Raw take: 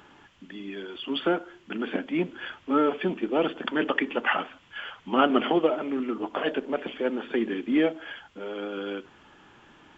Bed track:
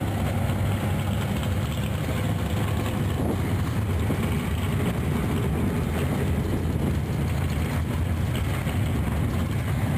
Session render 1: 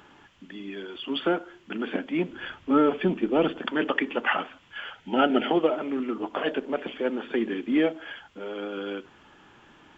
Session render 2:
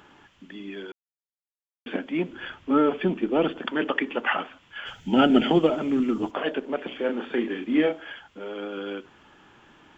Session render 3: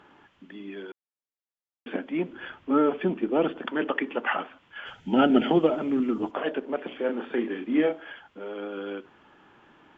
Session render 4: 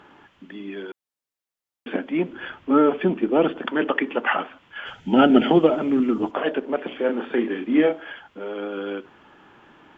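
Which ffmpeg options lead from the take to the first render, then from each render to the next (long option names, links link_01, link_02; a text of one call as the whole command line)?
ffmpeg -i in.wav -filter_complex "[0:a]asettb=1/sr,asplit=3[link_01][link_02][link_03];[link_01]atrim=end=2.304[link_04];[link_02]atrim=start=2.3:end=3.59,asetpts=PTS-STARTPTS,afade=type=in:duration=0.004:curve=qsin,afade=type=out:start_time=1.286:duration=0.004:curve=qsin,lowshelf=frequency=230:gain=8.5[link_05];[link_03]atrim=start=3.586[link_06];[link_04][link_05]acrossfade=duration=0.004:curve1=hsin:curve2=qsin[link_07];[link_07][link_06]acrossfade=duration=0.004:curve1=qsin:curve2=hsin,asettb=1/sr,asplit=3[link_08][link_09][link_10];[link_08]atrim=end=4.934[link_11];[link_09]atrim=start=4.93:end=5.48,asetpts=PTS-STARTPTS,afade=type=in:duration=0.004:curve=qsin,afade=type=out:start_time=0.546:duration=0.004:curve=qsin,asuperstop=centerf=1100:order=8:qfactor=3.6[link_12];[link_10]atrim=start=5.476[link_13];[link_11][link_12]acrossfade=duration=0.004:curve1=hsin:curve2=qsin[link_14];[link_14][link_13]acrossfade=duration=0.004:curve1=qsin:curve2=hsin" out.wav
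ffmpeg -i in.wav -filter_complex "[0:a]asplit=3[link_01][link_02][link_03];[link_01]afade=type=out:start_time=4.85:duration=0.02[link_04];[link_02]bass=frequency=250:gain=14,treble=frequency=4000:gain=14,afade=type=in:start_time=4.85:duration=0.02,afade=type=out:start_time=6.3:duration=0.02[link_05];[link_03]afade=type=in:start_time=6.3:duration=0.02[link_06];[link_04][link_05][link_06]amix=inputs=3:normalize=0,asettb=1/sr,asplit=3[link_07][link_08][link_09];[link_07]atrim=end=6.884[link_10];[link_08]atrim=start=6.88:end=8,asetpts=PTS-STARTPTS,afade=type=in:duration=0.004:curve=qsin,afade=type=out:start_time=1.116:duration=0.004:curve=qsin,asplit=2[link_11][link_12];[link_12]adelay=33,volume=-4.5dB[link_13];[link_11][link_13]amix=inputs=2:normalize=0,atrim=end_sample=49392[link_14];[link_09]atrim=start=7.996[link_15];[link_10][link_14]acrossfade=duration=0.004:curve1=hsin:curve2=qsin[link_16];[link_16][link_15]acrossfade=duration=0.004:curve1=qsin:curve2=hsin,asplit=3[link_17][link_18][link_19];[link_17]atrim=end=0.92,asetpts=PTS-STARTPTS,afade=type=out:start_time=0.916:duration=0.004:curve=hsin[link_20];[link_18]atrim=start=0.92:end=1.86,asetpts=PTS-STARTPTS,volume=0[link_21];[link_19]atrim=start=1.86,asetpts=PTS-STARTPTS,afade=type=in:duration=0.004:curve=hsin[link_22];[link_20][link_21][link_22]concat=n=3:v=0:a=1" out.wav
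ffmpeg -i in.wav -af "lowpass=frequency=1900:poles=1,lowshelf=frequency=130:gain=-8.5" out.wav
ffmpeg -i in.wav -af "volume=5dB" out.wav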